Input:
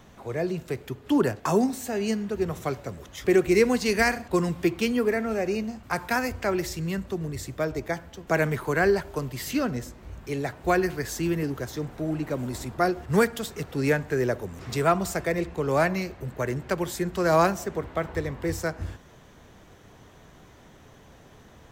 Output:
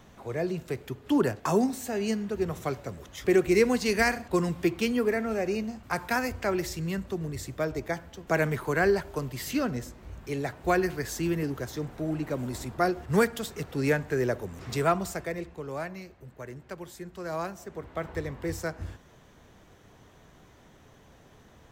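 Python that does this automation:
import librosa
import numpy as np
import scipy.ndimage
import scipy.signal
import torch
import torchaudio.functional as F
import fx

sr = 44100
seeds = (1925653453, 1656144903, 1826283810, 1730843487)

y = fx.gain(x, sr, db=fx.line((14.82, -2.0), (15.85, -13.0), (17.5, -13.0), (18.08, -4.0)))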